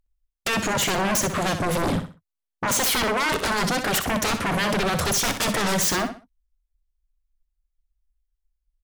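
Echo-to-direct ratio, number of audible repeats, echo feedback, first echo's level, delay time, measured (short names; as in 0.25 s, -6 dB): -8.5 dB, 3, 29%, -9.0 dB, 63 ms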